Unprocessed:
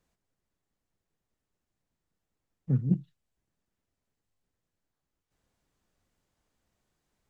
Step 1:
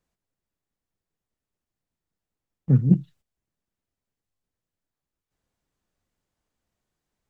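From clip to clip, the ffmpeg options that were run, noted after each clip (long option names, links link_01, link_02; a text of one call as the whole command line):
ffmpeg -i in.wav -af "agate=range=-12dB:threshold=-57dB:ratio=16:detection=peak,volume=8.5dB" out.wav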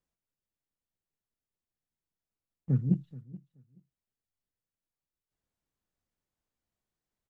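ffmpeg -i in.wav -af "aecho=1:1:428|856:0.112|0.0191,volume=-9dB" out.wav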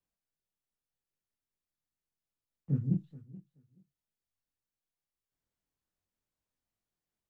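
ffmpeg -i in.wav -filter_complex "[0:a]acrossover=split=240|470[link_01][link_02][link_03];[link_03]alimiter=level_in=23.5dB:limit=-24dB:level=0:latency=1:release=64,volume=-23.5dB[link_04];[link_01][link_02][link_04]amix=inputs=3:normalize=0,flanger=delay=19.5:depth=6.5:speed=2.5" out.wav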